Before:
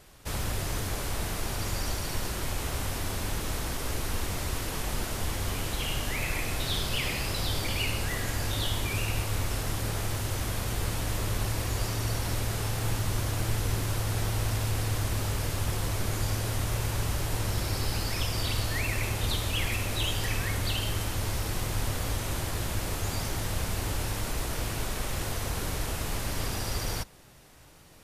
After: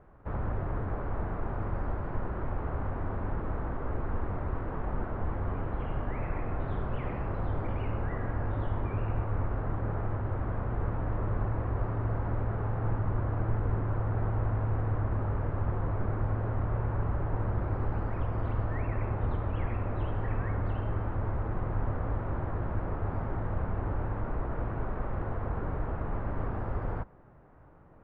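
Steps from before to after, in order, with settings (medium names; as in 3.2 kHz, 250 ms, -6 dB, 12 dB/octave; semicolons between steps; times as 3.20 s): low-pass 1.4 kHz 24 dB/octave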